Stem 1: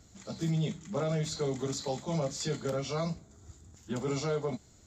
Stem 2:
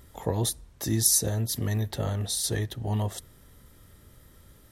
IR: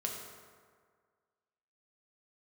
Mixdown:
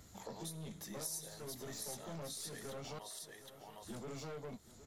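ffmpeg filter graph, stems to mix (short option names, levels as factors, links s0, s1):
-filter_complex "[0:a]aeval=exprs='(tanh(50.1*val(0)+0.35)-tanh(0.35))/50.1':c=same,volume=0.944,asplit=3[s0][s1][s2];[s0]atrim=end=2.99,asetpts=PTS-STARTPTS,afade=t=out:st=2.986:d=0.004:c=hsin[s3];[s1]atrim=start=2.99:end=3.82,asetpts=PTS-STARTPTS,volume=0[s4];[s2]atrim=start=3.82,asetpts=PTS-STARTPTS,afade=t=in:d=0.004:c=hsin[s5];[s3][s4][s5]concat=n=3:v=0:a=1,asplit=2[s6][s7];[s7]volume=0.0841[s8];[1:a]highpass=580,volume=0.282,asplit=4[s9][s10][s11][s12];[s10]volume=0.355[s13];[s11]volume=0.631[s14];[s12]apad=whole_len=214671[s15];[s6][s15]sidechaincompress=threshold=0.01:ratio=8:attack=30:release=528[s16];[2:a]atrim=start_sample=2205[s17];[s13][s17]afir=irnorm=-1:irlink=0[s18];[s8][s14]amix=inputs=2:normalize=0,aecho=0:1:763|1526|2289|3052:1|0.22|0.0484|0.0106[s19];[s16][s9][s18][s19]amix=inputs=4:normalize=0,acompressor=threshold=0.00316:ratio=2"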